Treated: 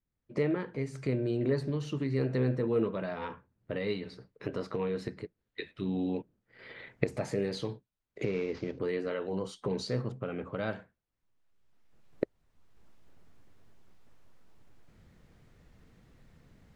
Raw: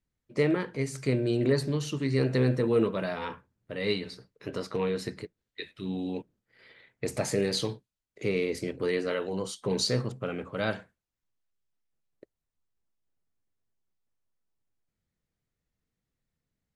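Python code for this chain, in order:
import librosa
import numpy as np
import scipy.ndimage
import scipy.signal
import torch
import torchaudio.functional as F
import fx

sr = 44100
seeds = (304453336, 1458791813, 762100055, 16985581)

y = fx.cvsd(x, sr, bps=32000, at=(8.24, 8.79))
y = fx.recorder_agc(y, sr, target_db=-20.0, rise_db_per_s=20.0, max_gain_db=30)
y = fx.lowpass(y, sr, hz=1900.0, slope=6)
y = y * librosa.db_to_amplitude(-4.0)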